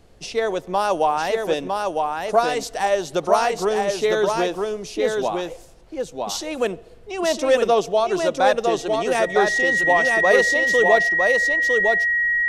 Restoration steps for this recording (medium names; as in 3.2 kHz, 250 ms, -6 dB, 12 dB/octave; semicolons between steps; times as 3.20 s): band-stop 1.9 kHz, Q 30; expander -29 dBFS, range -21 dB; inverse comb 956 ms -3.5 dB